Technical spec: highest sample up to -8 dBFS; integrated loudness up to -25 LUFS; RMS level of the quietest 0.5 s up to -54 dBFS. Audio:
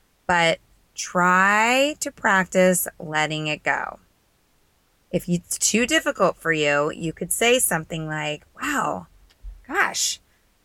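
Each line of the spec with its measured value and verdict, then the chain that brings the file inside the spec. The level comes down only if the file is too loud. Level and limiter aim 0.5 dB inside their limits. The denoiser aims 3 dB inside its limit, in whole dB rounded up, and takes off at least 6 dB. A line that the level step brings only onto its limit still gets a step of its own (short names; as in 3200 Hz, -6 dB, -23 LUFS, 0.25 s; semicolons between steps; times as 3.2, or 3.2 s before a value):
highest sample -6.0 dBFS: fail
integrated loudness -21.0 LUFS: fail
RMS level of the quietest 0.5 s -63 dBFS: OK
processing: gain -4.5 dB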